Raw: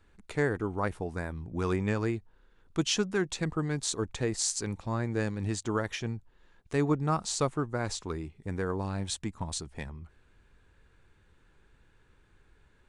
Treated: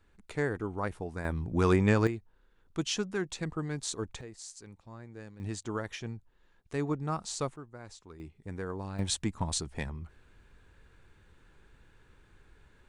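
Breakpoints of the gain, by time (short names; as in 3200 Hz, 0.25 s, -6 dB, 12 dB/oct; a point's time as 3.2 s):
-3 dB
from 1.25 s +5 dB
from 2.07 s -4 dB
from 4.21 s -16 dB
from 5.4 s -5 dB
from 7.56 s -15 dB
from 8.2 s -5.5 dB
from 8.99 s +3 dB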